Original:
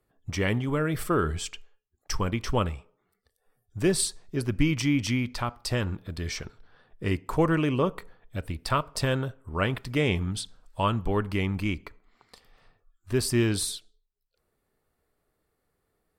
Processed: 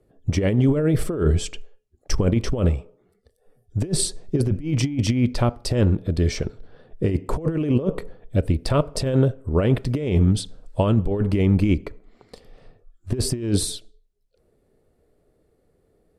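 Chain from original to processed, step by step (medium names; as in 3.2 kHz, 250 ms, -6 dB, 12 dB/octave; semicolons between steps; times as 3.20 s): low-pass 12 kHz 24 dB/octave; resonant low shelf 740 Hz +9.5 dB, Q 1.5; compressor with a negative ratio -18 dBFS, ratio -0.5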